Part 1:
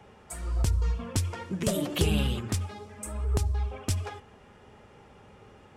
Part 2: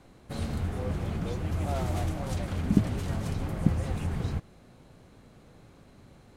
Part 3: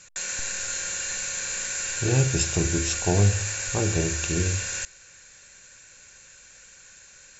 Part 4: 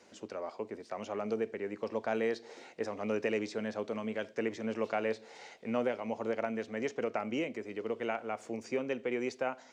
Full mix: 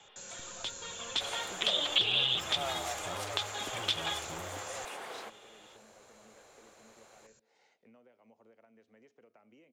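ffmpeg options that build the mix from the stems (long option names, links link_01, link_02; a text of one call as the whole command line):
ffmpeg -i stem1.wav -i stem2.wav -i stem3.wav -i stem4.wav -filter_complex "[0:a]highpass=590,dynaudnorm=framelen=230:gausssize=11:maxgain=8dB,lowpass=frequency=3500:width_type=q:width=10,volume=-5.5dB[link_01];[1:a]highpass=frequency=470:width=0.5412,highpass=frequency=470:width=1.3066,adelay=900,volume=1.5dB[link_02];[2:a]equalizer=frequency=125:width_type=o:width=1:gain=9,equalizer=frequency=250:width_type=o:width=1:gain=7,equalizer=frequency=500:width_type=o:width=1:gain=7,equalizer=frequency=1000:width_type=o:width=1:gain=3,equalizer=frequency=2000:width_type=o:width=1:gain=-8,asoftclip=type=hard:threshold=-20dB,volume=-15.5dB[link_03];[3:a]acompressor=threshold=-40dB:ratio=8,adelay=2200,volume=-18.5dB[link_04];[link_01][link_02][link_03][link_04]amix=inputs=4:normalize=0,acrossover=split=190|630|3600[link_05][link_06][link_07][link_08];[link_05]acompressor=threshold=-52dB:ratio=4[link_09];[link_06]acompressor=threshold=-48dB:ratio=4[link_10];[link_07]acompressor=threshold=-29dB:ratio=4[link_11];[link_08]acompressor=threshold=-35dB:ratio=4[link_12];[link_09][link_10][link_11][link_12]amix=inputs=4:normalize=0" out.wav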